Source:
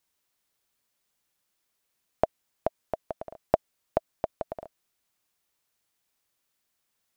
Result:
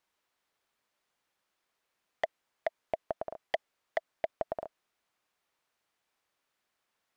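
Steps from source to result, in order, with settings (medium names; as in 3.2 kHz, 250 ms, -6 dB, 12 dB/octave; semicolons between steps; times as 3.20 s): wavefolder -17 dBFS; overdrive pedal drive 11 dB, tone 1.4 kHz, clips at -17 dBFS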